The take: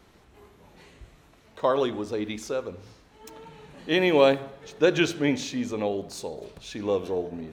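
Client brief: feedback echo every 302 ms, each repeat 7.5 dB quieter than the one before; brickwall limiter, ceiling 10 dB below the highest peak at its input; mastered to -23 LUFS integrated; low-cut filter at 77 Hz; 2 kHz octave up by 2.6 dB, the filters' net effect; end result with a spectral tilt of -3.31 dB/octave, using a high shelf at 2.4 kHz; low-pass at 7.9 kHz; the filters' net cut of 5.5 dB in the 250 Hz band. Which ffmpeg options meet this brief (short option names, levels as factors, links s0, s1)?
-af "highpass=77,lowpass=7900,equalizer=f=250:t=o:g=-8,equalizer=f=2000:t=o:g=7,highshelf=f=2400:g=-7,alimiter=limit=0.141:level=0:latency=1,aecho=1:1:302|604|906|1208|1510:0.422|0.177|0.0744|0.0312|0.0131,volume=2.37"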